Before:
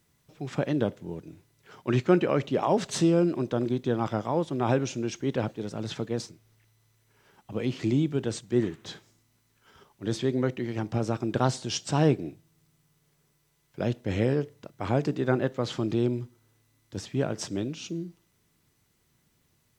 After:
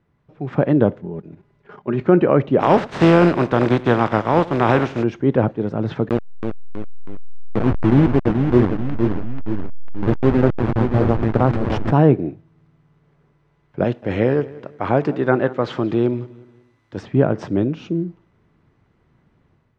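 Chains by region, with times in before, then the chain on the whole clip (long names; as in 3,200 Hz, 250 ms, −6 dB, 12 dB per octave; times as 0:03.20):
0:01.01–0:02.01: comb filter 4.9 ms, depth 49% + output level in coarse steps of 10 dB
0:02.59–0:05.02: compressing power law on the bin magnitudes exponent 0.47 + downward expander −40 dBFS + single-tap delay 92 ms −19.5 dB
0:06.09–0:11.92: hold until the input has moved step −25 dBFS + upward compression, threshold −34 dBFS + delay with pitch and tempo change per echo 321 ms, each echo −1 semitone, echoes 3, each echo −6 dB
0:13.84–0:17.03: spectral tilt +2.5 dB per octave + repeating echo 181 ms, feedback 38%, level −19.5 dB
whole clip: low-pass filter 1,500 Hz 12 dB per octave; automatic gain control gain up to 6.5 dB; boost into a limiter +6.5 dB; level −1 dB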